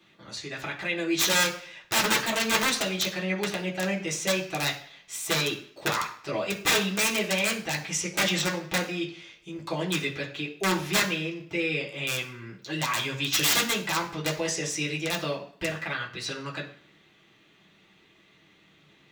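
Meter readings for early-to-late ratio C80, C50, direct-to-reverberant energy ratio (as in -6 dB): 14.0 dB, 10.0 dB, -3.5 dB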